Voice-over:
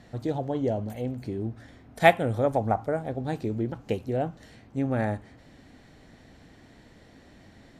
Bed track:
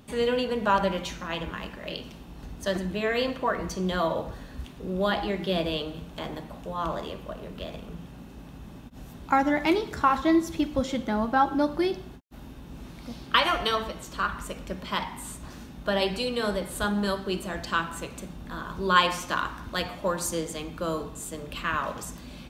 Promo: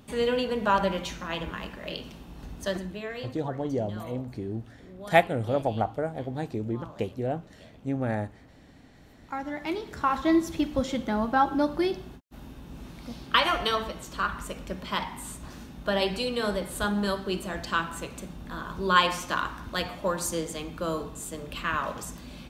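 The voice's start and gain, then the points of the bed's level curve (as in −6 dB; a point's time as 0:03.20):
3.10 s, −2.0 dB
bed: 0:02.62 −0.5 dB
0:03.45 −16.5 dB
0:09.00 −16.5 dB
0:10.33 −0.5 dB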